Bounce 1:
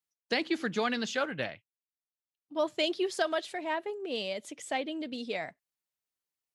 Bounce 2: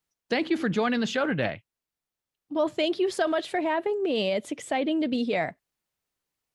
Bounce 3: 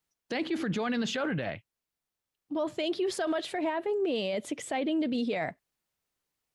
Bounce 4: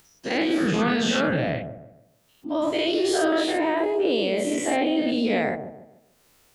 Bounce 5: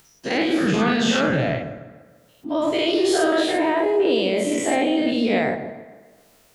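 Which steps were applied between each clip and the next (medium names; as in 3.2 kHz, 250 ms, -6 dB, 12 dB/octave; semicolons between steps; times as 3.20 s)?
tilt EQ -1.5 dB/octave; in parallel at -2 dB: compressor with a negative ratio -34 dBFS, ratio -0.5; on the sum: dynamic bell 5.9 kHz, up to -5 dB, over -49 dBFS, Q 1.2; trim +2.5 dB
peak limiter -23 dBFS, peak gain reduction 10.5 dB
every event in the spectrogram widened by 120 ms; upward compressor, threshold -46 dBFS; feedback echo behind a low-pass 148 ms, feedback 34%, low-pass 590 Hz, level -4 dB; trim +2 dB
reverberation RT60 1.7 s, pre-delay 4 ms, DRR 10.5 dB; trim +2.5 dB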